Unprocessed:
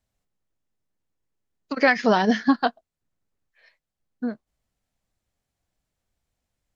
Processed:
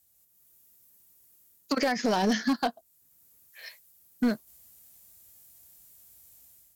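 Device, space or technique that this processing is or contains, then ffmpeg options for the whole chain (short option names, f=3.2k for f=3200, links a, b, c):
FM broadcast chain: -filter_complex "[0:a]highpass=50,dynaudnorm=f=140:g=5:m=11dB,acrossover=split=1100|5000[a][b][c];[a]acompressor=threshold=-16dB:ratio=4[d];[b]acompressor=threshold=-35dB:ratio=4[e];[c]acompressor=threshold=-51dB:ratio=4[f];[d][e][f]amix=inputs=3:normalize=0,aemphasis=mode=production:type=50fm,alimiter=limit=-13.5dB:level=0:latency=1:release=21,asoftclip=type=hard:threshold=-17dB,lowpass=f=15k:w=0.5412,lowpass=f=15k:w=1.3066,aemphasis=mode=production:type=50fm,volume=-1.5dB"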